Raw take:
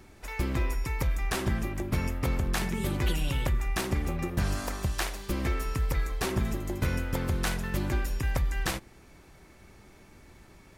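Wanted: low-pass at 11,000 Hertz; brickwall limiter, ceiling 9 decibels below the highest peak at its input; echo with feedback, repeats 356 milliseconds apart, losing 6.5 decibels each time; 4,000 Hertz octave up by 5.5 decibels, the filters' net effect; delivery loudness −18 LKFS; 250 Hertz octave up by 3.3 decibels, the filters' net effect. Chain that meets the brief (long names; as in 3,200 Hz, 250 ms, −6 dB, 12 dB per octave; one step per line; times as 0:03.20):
low-pass filter 11,000 Hz
parametric band 250 Hz +4.5 dB
parametric band 4,000 Hz +7 dB
brickwall limiter −23.5 dBFS
repeating echo 356 ms, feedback 47%, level −6.5 dB
level +14 dB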